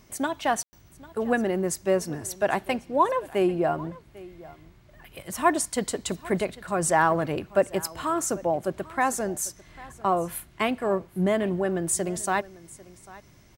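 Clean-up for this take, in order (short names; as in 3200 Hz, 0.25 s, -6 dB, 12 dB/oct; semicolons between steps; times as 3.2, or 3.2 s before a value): room tone fill 0.63–0.73; inverse comb 0.796 s -20.5 dB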